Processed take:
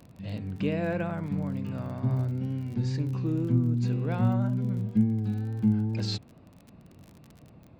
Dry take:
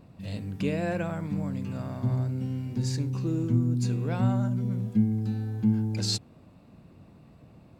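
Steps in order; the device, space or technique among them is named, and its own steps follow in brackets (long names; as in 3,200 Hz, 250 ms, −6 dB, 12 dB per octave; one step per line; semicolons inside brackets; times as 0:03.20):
lo-fi chain (low-pass filter 3,500 Hz 12 dB per octave; tape wow and flutter; surface crackle 33 per second −39 dBFS)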